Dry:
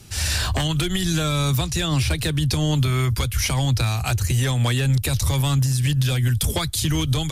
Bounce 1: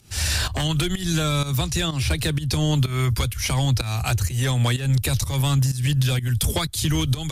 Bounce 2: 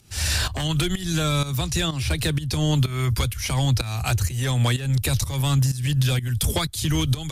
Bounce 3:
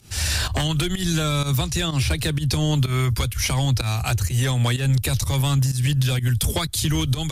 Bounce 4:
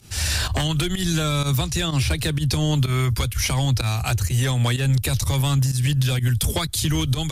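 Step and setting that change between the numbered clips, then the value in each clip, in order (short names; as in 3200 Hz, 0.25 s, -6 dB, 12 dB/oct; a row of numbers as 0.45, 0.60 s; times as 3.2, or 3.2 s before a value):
pump, release: 234, 373, 113, 73 ms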